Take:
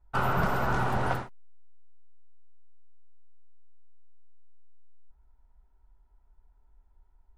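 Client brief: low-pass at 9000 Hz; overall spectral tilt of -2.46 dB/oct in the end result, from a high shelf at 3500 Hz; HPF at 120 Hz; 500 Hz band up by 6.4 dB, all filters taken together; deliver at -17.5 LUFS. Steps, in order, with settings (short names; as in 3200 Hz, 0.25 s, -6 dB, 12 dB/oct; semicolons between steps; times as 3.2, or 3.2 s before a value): HPF 120 Hz; LPF 9000 Hz; bell 500 Hz +8.5 dB; high shelf 3500 Hz -6 dB; gain +9.5 dB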